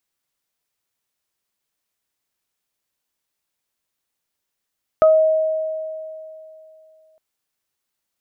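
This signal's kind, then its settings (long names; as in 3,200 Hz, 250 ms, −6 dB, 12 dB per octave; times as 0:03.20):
harmonic partials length 2.16 s, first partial 632 Hz, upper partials −8 dB, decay 2.84 s, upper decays 0.24 s, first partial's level −8 dB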